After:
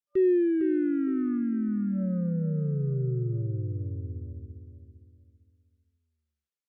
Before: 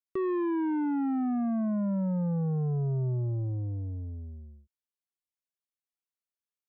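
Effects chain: dynamic EQ 370 Hz, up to +8 dB, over -45 dBFS, Q 4.8; feedback echo 0.456 s, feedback 33%, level -8.5 dB; FFT band-reject 580–1200 Hz; air absorption 55 m; Opus 128 kbps 48000 Hz

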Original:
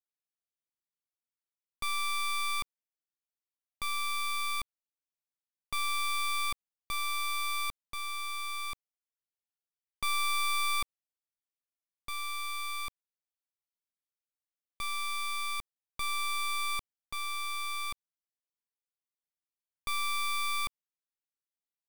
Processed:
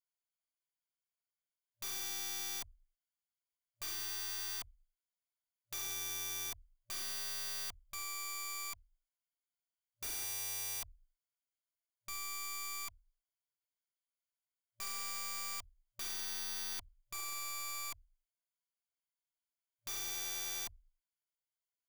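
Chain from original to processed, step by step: FFT band-reject 110–590 Hz; ripple EQ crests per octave 1.8, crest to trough 16 dB; wrapped overs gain 30 dB; gain -7 dB

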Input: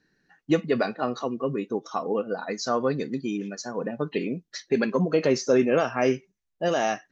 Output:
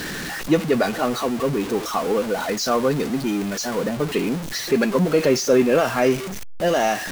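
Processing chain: zero-crossing step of -28 dBFS; requantised 8-bit, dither none; gain +3 dB

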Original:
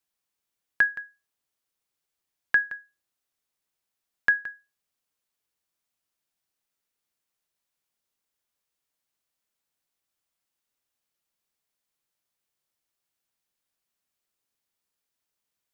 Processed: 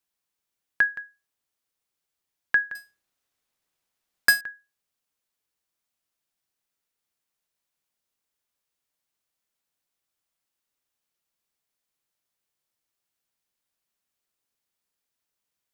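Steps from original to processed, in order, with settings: 2.75–4.41 half-waves squared off

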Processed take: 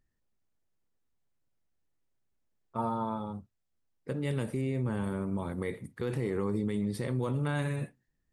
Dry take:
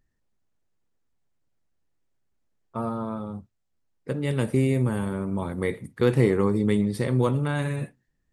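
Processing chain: limiter -18.5 dBFS, peak gain reduction 10.5 dB; 2.78–3.33 small resonant body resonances 890/3400 Hz, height 12 dB, ringing for 25 ms; 4.61–5.04 air absorption 63 m; gain -4.5 dB

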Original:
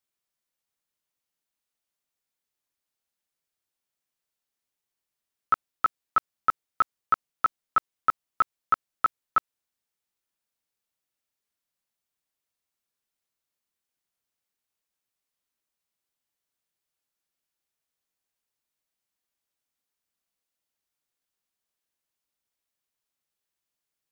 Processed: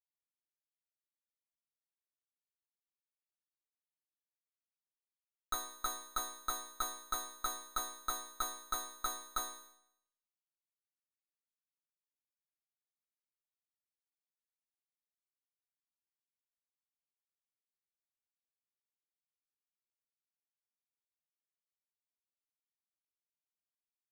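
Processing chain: fuzz box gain 48 dB, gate -51 dBFS; resonator bank B3 major, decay 0.72 s; gain +12.5 dB

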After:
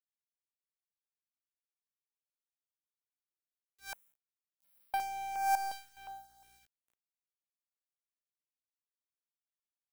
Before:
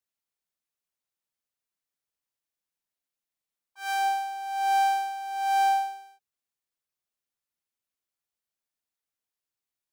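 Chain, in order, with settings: on a send: darkening echo 0.422 s, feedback 47%, low-pass 1400 Hz, level -9 dB; on the sum: hum 60 Hz, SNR 29 dB; 3.93–4.94 inverse Chebyshev band-stop 340–2900 Hz, stop band 80 dB; power-law curve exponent 2; 5.55–5.97 resonator 360 Hz, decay 0.59 s, mix 80%; bit-crush 11-bit; high shelf 8700 Hz +7.5 dB; stepped notch 2.8 Hz 650–6700 Hz

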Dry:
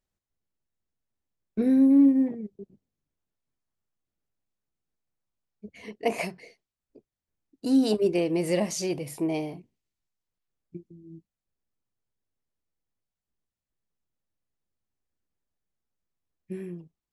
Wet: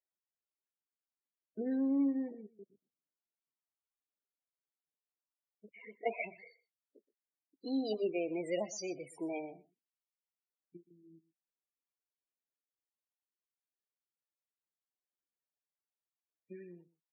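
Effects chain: weighting filter A; loudest bins only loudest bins 16; echo 0.123 s -19.5 dB; gain -5.5 dB

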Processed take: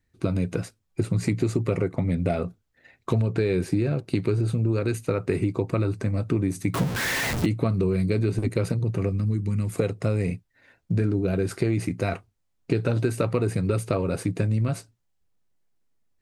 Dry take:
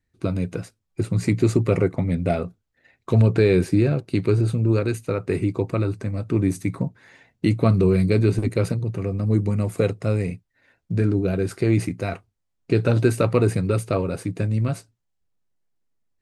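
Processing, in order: 6.74–7.46 zero-crossing step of -23.5 dBFS; compressor, threshold -23 dBFS, peak gain reduction 11.5 dB; 9.09–9.73 bell 640 Hz -13.5 dB 1.4 oct; gain +3 dB

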